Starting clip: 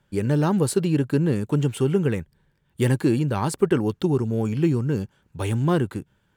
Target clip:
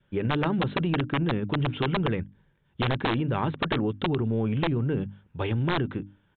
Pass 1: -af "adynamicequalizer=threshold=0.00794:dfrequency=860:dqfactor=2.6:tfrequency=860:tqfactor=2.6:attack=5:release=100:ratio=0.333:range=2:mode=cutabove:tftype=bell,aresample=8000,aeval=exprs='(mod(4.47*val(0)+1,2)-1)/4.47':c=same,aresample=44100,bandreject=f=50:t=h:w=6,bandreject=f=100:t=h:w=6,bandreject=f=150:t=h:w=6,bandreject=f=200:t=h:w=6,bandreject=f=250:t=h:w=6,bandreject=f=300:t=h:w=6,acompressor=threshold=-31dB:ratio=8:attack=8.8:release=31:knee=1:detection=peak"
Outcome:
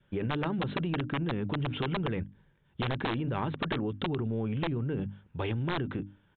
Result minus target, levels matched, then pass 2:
compressor: peak gain reduction +5.5 dB
-af "adynamicequalizer=threshold=0.00794:dfrequency=860:dqfactor=2.6:tfrequency=860:tqfactor=2.6:attack=5:release=100:ratio=0.333:range=2:mode=cutabove:tftype=bell,aresample=8000,aeval=exprs='(mod(4.47*val(0)+1,2)-1)/4.47':c=same,aresample=44100,bandreject=f=50:t=h:w=6,bandreject=f=100:t=h:w=6,bandreject=f=150:t=h:w=6,bandreject=f=200:t=h:w=6,bandreject=f=250:t=h:w=6,bandreject=f=300:t=h:w=6,acompressor=threshold=-24.5dB:ratio=8:attack=8.8:release=31:knee=1:detection=peak"

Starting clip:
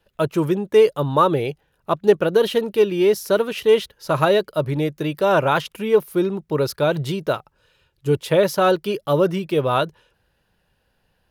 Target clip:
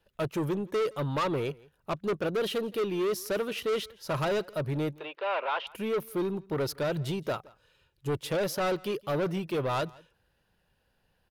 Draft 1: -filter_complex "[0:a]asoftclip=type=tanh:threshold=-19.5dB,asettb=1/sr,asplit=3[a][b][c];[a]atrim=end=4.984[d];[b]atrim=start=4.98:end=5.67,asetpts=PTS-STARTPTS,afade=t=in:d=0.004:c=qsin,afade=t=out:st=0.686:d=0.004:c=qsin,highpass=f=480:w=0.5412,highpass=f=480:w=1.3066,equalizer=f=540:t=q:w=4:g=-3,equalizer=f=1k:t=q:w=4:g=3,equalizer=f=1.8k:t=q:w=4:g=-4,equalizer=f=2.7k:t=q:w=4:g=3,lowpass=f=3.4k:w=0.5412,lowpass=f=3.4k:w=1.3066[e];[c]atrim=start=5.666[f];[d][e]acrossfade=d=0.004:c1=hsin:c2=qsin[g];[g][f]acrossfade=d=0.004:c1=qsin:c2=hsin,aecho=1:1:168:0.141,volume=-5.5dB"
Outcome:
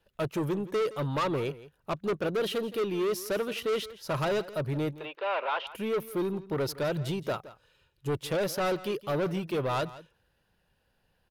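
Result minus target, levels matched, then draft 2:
echo-to-direct +7 dB
-filter_complex "[0:a]asoftclip=type=tanh:threshold=-19.5dB,asettb=1/sr,asplit=3[a][b][c];[a]atrim=end=4.984[d];[b]atrim=start=4.98:end=5.67,asetpts=PTS-STARTPTS,afade=t=in:d=0.004:c=qsin,afade=t=out:st=0.686:d=0.004:c=qsin,highpass=f=480:w=0.5412,highpass=f=480:w=1.3066,equalizer=f=540:t=q:w=4:g=-3,equalizer=f=1k:t=q:w=4:g=3,equalizer=f=1.8k:t=q:w=4:g=-4,equalizer=f=2.7k:t=q:w=4:g=3,lowpass=f=3.4k:w=0.5412,lowpass=f=3.4k:w=1.3066[e];[c]atrim=start=5.666[f];[d][e]acrossfade=d=0.004:c1=hsin:c2=qsin[g];[g][f]acrossfade=d=0.004:c1=qsin:c2=hsin,aecho=1:1:168:0.0631,volume=-5.5dB"

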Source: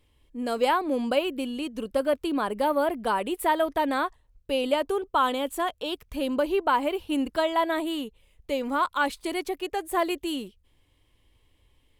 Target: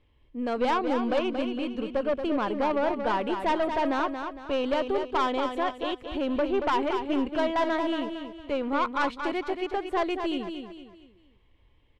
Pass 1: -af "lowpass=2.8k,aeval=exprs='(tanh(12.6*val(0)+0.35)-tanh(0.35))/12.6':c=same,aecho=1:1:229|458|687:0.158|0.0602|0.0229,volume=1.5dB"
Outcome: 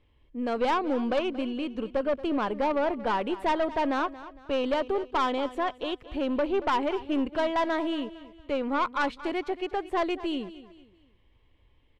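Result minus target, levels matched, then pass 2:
echo-to-direct -9 dB
-af "lowpass=2.8k,aeval=exprs='(tanh(12.6*val(0)+0.35)-tanh(0.35))/12.6':c=same,aecho=1:1:229|458|687|916:0.447|0.17|0.0645|0.0245,volume=1.5dB"

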